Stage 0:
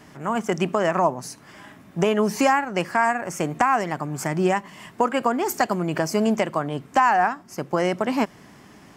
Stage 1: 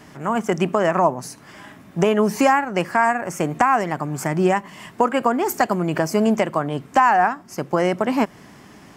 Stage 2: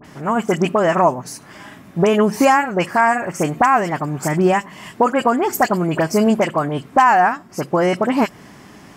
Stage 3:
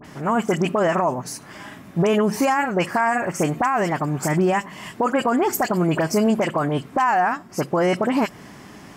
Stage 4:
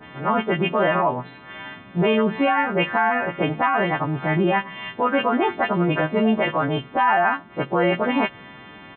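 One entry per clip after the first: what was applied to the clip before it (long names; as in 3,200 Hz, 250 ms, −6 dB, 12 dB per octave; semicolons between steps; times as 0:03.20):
dynamic equaliser 4,800 Hz, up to −4 dB, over −39 dBFS, Q 0.73; level +3 dB
all-pass dispersion highs, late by 47 ms, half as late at 2,100 Hz; level +3 dB
brickwall limiter −11.5 dBFS, peak gain reduction 10 dB
every partial snapped to a pitch grid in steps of 2 semitones; bit-depth reduction 10 bits, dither none; downsampling to 8,000 Hz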